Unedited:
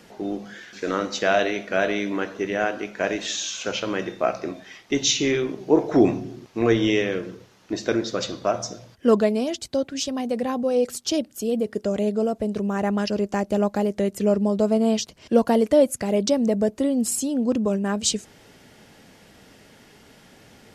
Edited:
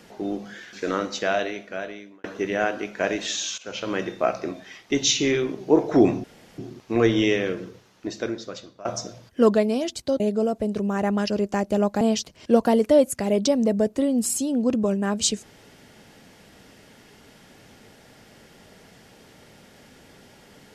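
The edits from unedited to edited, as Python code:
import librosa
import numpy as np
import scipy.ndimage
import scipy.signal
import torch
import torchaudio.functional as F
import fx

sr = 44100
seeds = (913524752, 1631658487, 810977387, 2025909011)

y = fx.edit(x, sr, fx.fade_out_span(start_s=0.85, length_s=1.39),
    fx.fade_in_from(start_s=3.58, length_s=0.37, floor_db=-17.5),
    fx.insert_room_tone(at_s=6.24, length_s=0.34),
    fx.fade_out_to(start_s=7.31, length_s=1.2, floor_db=-22.5),
    fx.cut(start_s=9.86, length_s=2.14),
    fx.cut(start_s=13.81, length_s=1.02), tone=tone)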